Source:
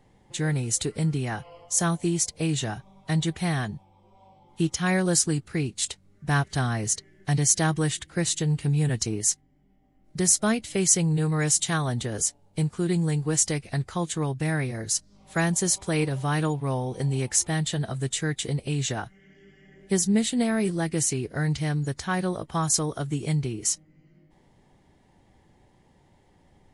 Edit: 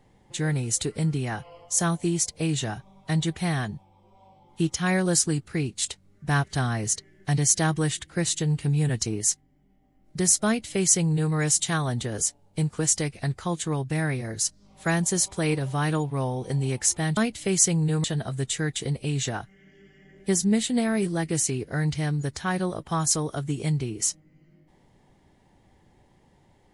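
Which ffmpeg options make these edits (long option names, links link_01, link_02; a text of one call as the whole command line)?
ffmpeg -i in.wav -filter_complex "[0:a]asplit=4[link_01][link_02][link_03][link_04];[link_01]atrim=end=12.792[link_05];[link_02]atrim=start=13.288:end=17.672[link_06];[link_03]atrim=start=10.458:end=11.332[link_07];[link_04]atrim=start=17.668[link_08];[link_05][link_06]acrossfade=duration=0.004:curve1=hsin:curve2=hsin[link_09];[link_09][link_07]acrossfade=duration=0.004:curve1=hsin:curve2=hsin[link_10];[link_10][link_08]acrossfade=duration=0.004:curve1=hsin:curve2=hsin" out.wav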